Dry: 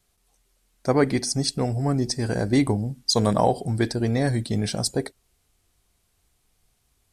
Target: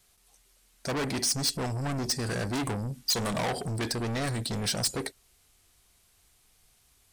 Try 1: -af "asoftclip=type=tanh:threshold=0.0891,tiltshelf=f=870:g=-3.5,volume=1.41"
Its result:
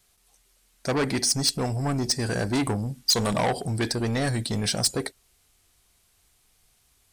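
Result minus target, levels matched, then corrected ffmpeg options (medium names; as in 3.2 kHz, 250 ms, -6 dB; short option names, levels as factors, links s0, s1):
saturation: distortion -5 dB
-af "asoftclip=type=tanh:threshold=0.0355,tiltshelf=f=870:g=-3.5,volume=1.41"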